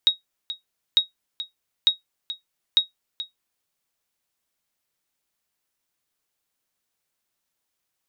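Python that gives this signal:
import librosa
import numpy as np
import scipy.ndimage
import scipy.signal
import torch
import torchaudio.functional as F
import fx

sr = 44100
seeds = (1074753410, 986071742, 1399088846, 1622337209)

y = fx.sonar_ping(sr, hz=3780.0, decay_s=0.14, every_s=0.9, pings=4, echo_s=0.43, echo_db=-14.0, level_db=-8.0)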